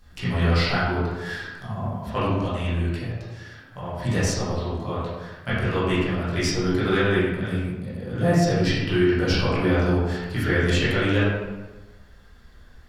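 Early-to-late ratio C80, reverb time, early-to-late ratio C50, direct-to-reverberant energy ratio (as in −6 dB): 1.5 dB, 1.2 s, −1.5 dB, −11.5 dB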